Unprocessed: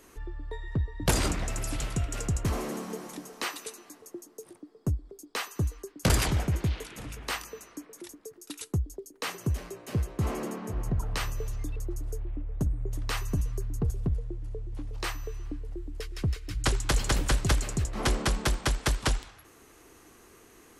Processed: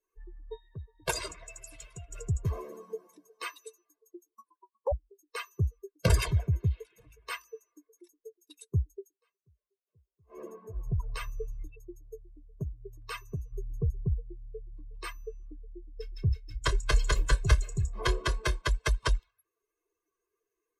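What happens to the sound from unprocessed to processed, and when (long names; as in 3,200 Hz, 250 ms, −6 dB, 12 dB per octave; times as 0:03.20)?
0:00.56–0:02.10: low-shelf EQ 380 Hz −7.5 dB
0:04.35–0:04.92: ring modulation 670 Hz
0:09.09–0:10.40: duck −19 dB, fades 0.13 s
0:11.67–0:13.52: low-shelf EQ 70 Hz −8.5 dB
0:15.94–0:18.62: flutter between parallel walls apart 5.1 metres, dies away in 0.22 s
whole clip: spectral dynamics exaggerated over time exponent 2; high-shelf EQ 6,500 Hz −8 dB; comb filter 1.9 ms, depth 96%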